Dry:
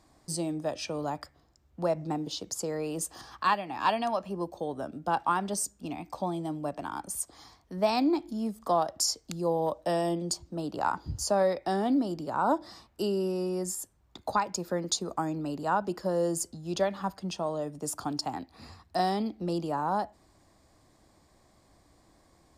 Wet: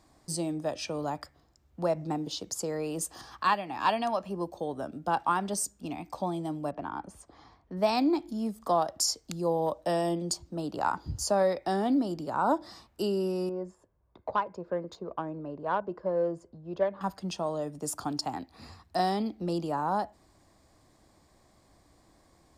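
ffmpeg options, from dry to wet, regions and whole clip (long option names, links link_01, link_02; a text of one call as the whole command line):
ffmpeg -i in.wav -filter_complex "[0:a]asettb=1/sr,asplit=3[link_01][link_02][link_03];[link_01]atrim=end=6.714[link_04];[link_02]atrim=start=6.71:end=7.77,asetpts=PTS-STARTPTS,afade=type=in:duration=0.004:curve=qsin,afade=type=out:start_time=1.056:duration=0.004:curve=qsin,lowpass=frequency=3600:poles=1,aemphasis=mode=reproduction:type=75fm[link_05];[link_03]atrim=start=7.766[link_06];[link_04][link_05]acrossfade=duration=0.004:curve1=hsin:curve2=qsin[link_07];[link_07][link_06]acrossfade=duration=0.004:curve1=qsin:curve2=hsin,asettb=1/sr,asplit=3[link_08][link_09][link_10];[link_08]atrim=end=13.494[link_11];[link_09]atrim=start=13.49:end=17.01,asetpts=PTS-STARTPTS,afade=type=in:duration=0.004:curve=qsin,afade=type=out:start_time=3.516:duration=0.004:curve=qsin,lowshelf=frequency=220:gain=-7.5,aecho=1:1:1.9:0.37,atrim=end_sample=155232,adynamicsmooth=sensitivity=0.5:basefreq=1200[link_12];[link_10]atrim=start=17.006[link_13];[link_11][link_12]acrossfade=duration=0.004:curve1=hsin:curve2=qsin[link_14];[link_14][link_13]acrossfade=duration=0.004:curve1=qsin:curve2=hsin" out.wav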